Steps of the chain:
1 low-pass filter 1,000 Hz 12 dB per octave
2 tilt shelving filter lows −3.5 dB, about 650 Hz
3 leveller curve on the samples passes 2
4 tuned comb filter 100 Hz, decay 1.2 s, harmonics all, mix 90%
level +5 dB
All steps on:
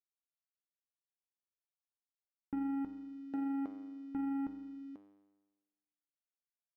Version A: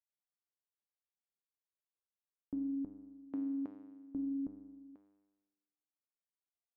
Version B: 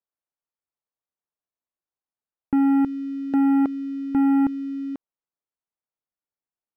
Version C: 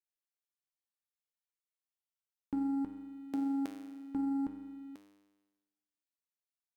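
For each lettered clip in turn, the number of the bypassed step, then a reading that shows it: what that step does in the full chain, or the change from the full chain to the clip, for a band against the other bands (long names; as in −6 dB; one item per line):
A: 3, change in momentary loudness spread +5 LU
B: 4, 500 Hz band −2.5 dB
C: 1, change in momentary loudness spread +3 LU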